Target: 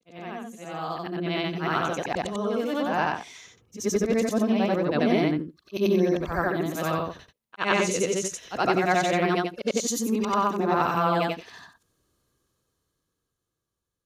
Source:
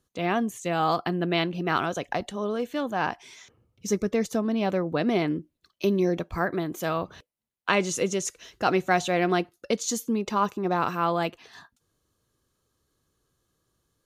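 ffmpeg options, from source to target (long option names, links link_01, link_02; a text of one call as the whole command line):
ffmpeg -i in.wav -af "afftfilt=real='re':imag='-im':win_size=8192:overlap=0.75,dynaudnorm=framelen=150:gausssize=21:maxgain=16dB,volume=-7dB" out.wav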